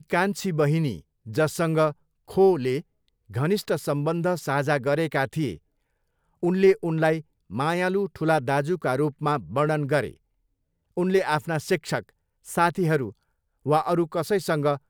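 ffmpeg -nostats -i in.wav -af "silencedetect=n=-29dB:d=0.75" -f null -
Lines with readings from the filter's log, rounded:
silence_start: 5.53
silence_end: 6.43 | silence_duration: 0.90
silence_start: 10.08
silence_end: 10.98 | silence_duration: 0.89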